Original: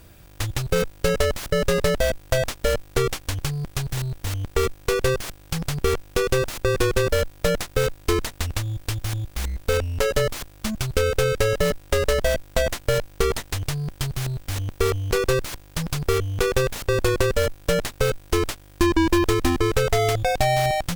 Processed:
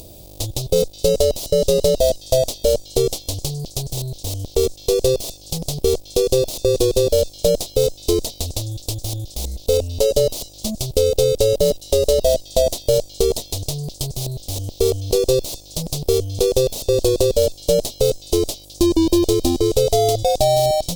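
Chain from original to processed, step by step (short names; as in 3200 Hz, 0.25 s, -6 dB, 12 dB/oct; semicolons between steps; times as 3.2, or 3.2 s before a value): upward compressor, threshold -35 dBFS; EQ curve 160 Hz 0 dB, 640 Hz +8 dB, 1600 Hz -25 dB, 3800 Hz +6 dB; delay with a stepping band-pass 0.21 s, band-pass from 4100 Hz, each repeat 0.7 oct, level -10.5 dB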